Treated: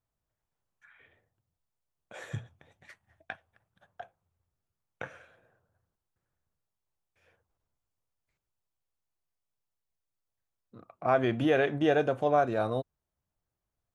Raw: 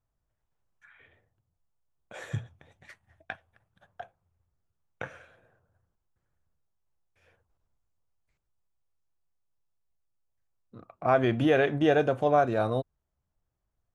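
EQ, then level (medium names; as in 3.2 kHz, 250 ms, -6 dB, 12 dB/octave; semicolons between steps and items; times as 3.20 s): bass shelf 75 Hz -8 dB; -2.0 dB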